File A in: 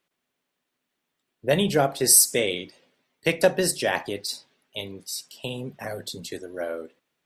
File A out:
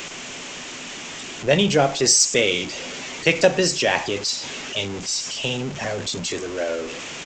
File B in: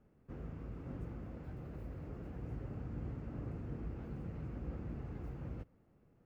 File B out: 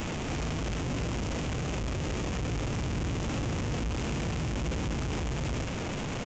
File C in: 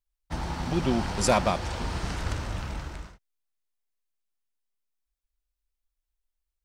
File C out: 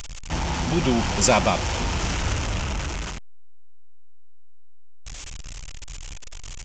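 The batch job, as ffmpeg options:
ffmpeg -i in.wav -af "aeval=exprs='val(0)+0.5*0.0299*sgn(val(0))':channel_layout=same,aresample=16000,aresample=44100,aexciter=amount=1.8:drive=3.6:freq=2300,volume=2.5dB" out.wav

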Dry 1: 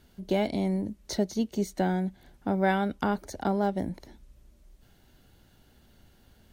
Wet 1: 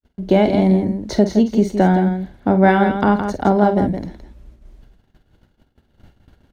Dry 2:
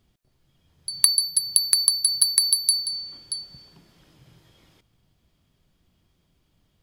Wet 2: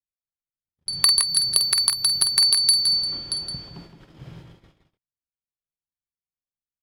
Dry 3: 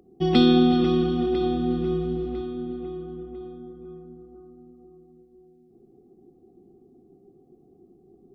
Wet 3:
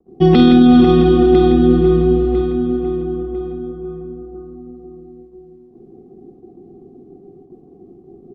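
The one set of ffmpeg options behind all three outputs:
ffmpeg -i in.wav -af "lowpass=frequency=2000:poles=1,agate=range=-55dB:threshold=-56dB:ratio=16:detection=peak,aecho=1:1:48|166:0.299|0.398,alimiter=level_in=13.5dB:limit=-1dB:release=50:level=0:latency=1,volume=-1dB" out.wav

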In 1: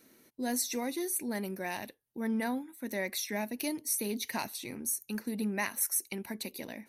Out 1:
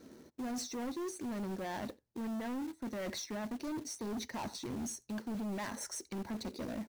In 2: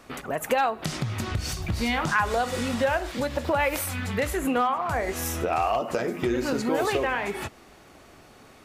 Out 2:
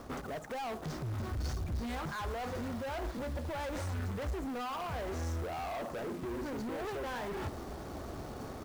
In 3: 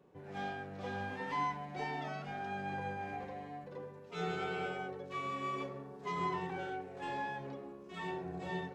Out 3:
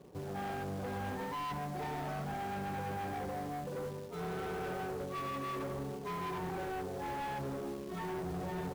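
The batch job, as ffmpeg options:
ffmpeg -i in.wav -filter_complex "[0:a]lowpass=frequency=6400:width=0.5412,lowpass=frequency=6400:width=1.3066,asplit=2[link_01][link_02];[link_02]adelay=87.46,volume=-27dB,highshelf=frequency=4000:gain=-1.97[link_03];[link_01][link_03]amix=inputs=2:normalize=0,asplit=2[link_04][link_05];[link_05]adynamicsmooth=sensitivity=3:basefreq=1500,volume=1dB[link_06];[link_04][link_06]amix=inputs=2:normalize=0,equalizer=frequency=2600:width=1.6:gain=-9.5,areverse,acompressor=threshold=-35dB:ratio=6,areverse,asoftclip=type=hard:threshold=-37.5dB,acrusher=bits=3:mode=log:mix=0:aa=0.000001,equalizer=frequency=68:width=1.6:gain=6.5,volume=3dB" out.wav

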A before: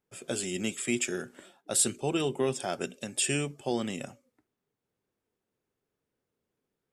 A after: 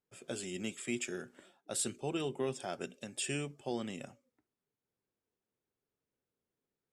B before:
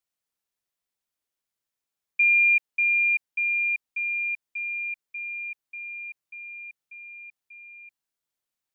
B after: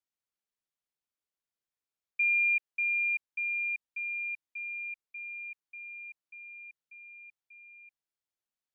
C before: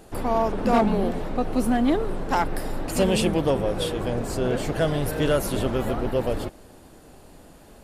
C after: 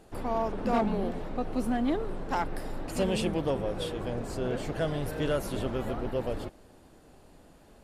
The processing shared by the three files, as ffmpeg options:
ffmpeg -i in.wav -af "highshelf=frequency=9300:gain=-7.5,volume=-7dB" out.wav

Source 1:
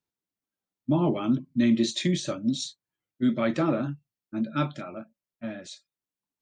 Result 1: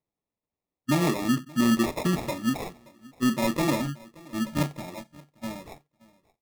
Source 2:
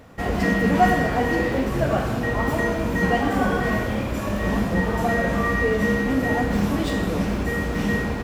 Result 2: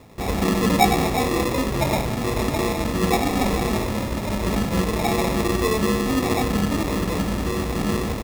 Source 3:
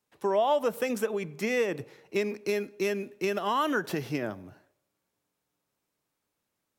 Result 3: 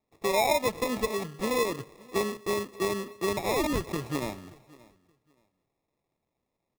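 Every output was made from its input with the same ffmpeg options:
ffmpeg -i in.wav -af "acrusher=samples=29:mix=1:aa=0.000001,aecho=1:1:576|1152:0.0708|0.0149" out.wav

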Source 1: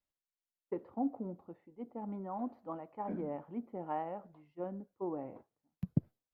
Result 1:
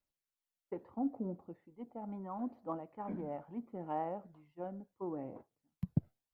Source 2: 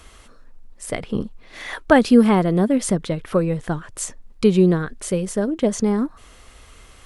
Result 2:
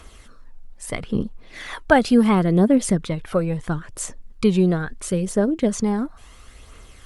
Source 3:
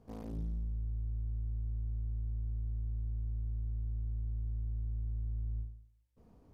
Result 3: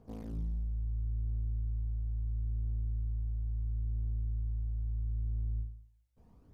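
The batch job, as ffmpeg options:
ffmpeg -i in.wav -af "aphaser=in_gain=1:out_gain=1:delay=1.5:decay=0.38:speed=0.74:type=triangular,volume=-1.5dB" out.wav

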